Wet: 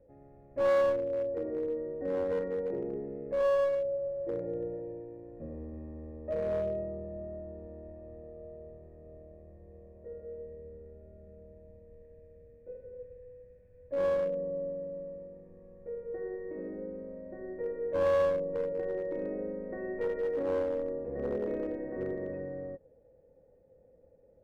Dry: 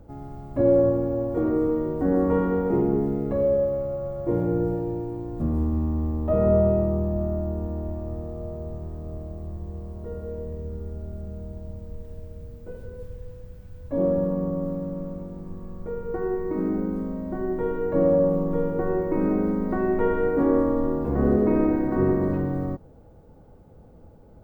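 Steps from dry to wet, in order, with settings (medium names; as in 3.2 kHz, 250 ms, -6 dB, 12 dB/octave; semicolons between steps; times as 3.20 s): cascade formant filter e; one-sided clip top -28 dBFS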